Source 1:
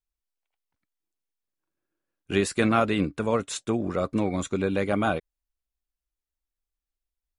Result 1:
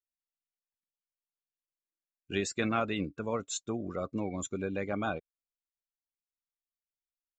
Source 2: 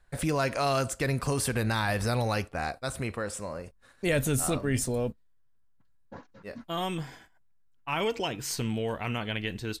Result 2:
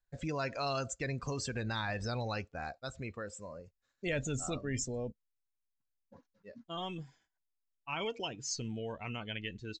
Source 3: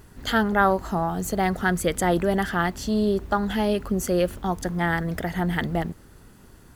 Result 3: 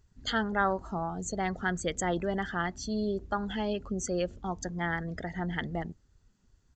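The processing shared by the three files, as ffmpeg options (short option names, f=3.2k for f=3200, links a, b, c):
-af "afftdn=nr=16:nf=-35,aemphasis=mode=production:type=75fm,aresample=16000,aresample=44100,volume=-8dB"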